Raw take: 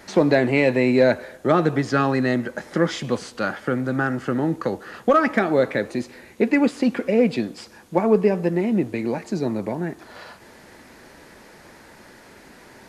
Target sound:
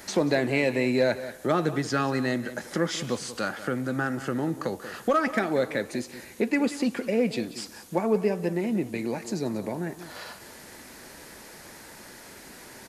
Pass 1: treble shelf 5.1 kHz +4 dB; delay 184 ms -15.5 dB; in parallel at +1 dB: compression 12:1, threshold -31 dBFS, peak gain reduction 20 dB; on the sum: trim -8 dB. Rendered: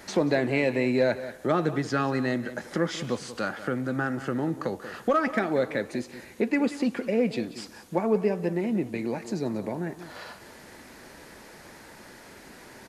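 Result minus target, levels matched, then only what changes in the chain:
8 kHz band -5.5 dB
change: treble shelf 5.1 kHz +13 dB

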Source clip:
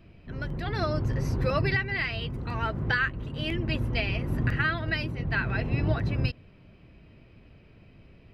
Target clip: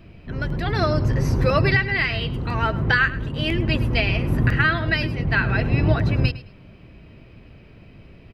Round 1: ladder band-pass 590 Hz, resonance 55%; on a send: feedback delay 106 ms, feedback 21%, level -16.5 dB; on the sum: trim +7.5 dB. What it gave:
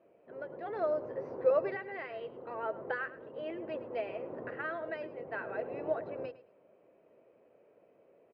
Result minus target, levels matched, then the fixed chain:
500 Hz band +9.5 dB
on a send: feedback delay 106 ms, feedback 21%, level -16.5 dB; on the sum: trim +7.5 dB

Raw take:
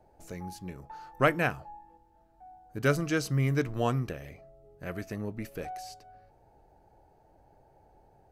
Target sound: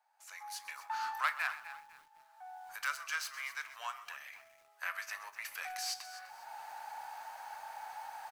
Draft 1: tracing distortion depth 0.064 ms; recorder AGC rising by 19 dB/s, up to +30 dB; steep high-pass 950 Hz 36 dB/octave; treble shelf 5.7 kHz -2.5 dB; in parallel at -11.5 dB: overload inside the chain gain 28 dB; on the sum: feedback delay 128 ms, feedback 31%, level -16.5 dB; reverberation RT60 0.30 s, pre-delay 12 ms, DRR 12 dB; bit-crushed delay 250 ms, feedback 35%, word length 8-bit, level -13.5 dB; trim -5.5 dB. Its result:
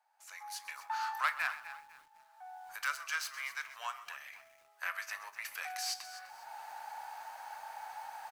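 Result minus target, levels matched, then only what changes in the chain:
overload inside the chain: distortion -7 dB
change: overload inside the chain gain 39.5 dB

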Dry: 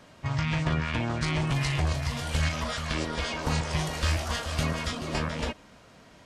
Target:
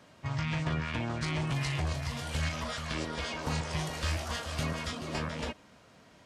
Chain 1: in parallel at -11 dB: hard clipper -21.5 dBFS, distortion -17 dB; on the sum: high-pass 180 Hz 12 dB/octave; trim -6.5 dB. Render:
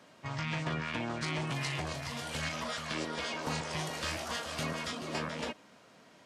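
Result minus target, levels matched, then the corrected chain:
125 Hz band -4.5 dB
in parallel at -11 dB: hard clipper -21.5 dBFS, distortion -17 dB; on the sum: high-pass 62 Hz 12 dB/octave; trim -6.5 dB

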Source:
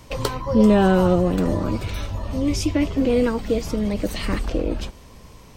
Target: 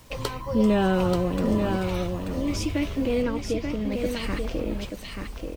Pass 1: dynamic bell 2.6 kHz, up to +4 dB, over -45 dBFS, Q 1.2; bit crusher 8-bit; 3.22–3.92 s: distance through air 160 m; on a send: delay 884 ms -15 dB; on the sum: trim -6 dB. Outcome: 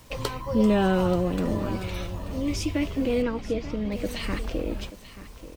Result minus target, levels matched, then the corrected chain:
echo-to-direct -9.5 dB
dynamic bell 2.6 kHz, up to +4 dB, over -45 dBFS, Q 1.2; bit crusher 8-bit; 3.22–3.92 s: distance through air 160 m; on a send: delay 884 ms -5.5 dB; on the sum: trim -6 dB

